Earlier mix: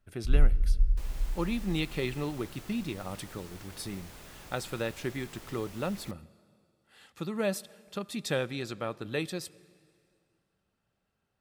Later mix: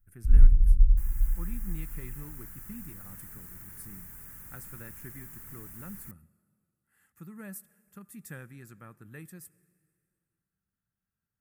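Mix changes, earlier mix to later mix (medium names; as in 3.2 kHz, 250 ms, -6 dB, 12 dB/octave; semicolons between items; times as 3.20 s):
speech -7.5 dB; first sound +5.5 dB; master: add FFT filter 180 Hz 0 dB, 600 Hz -16 dB, 1.7 kHz -1 dB, 3.8 kHz -23 dB, 7.3 kHz -2 dB, 14 kHz +12 dB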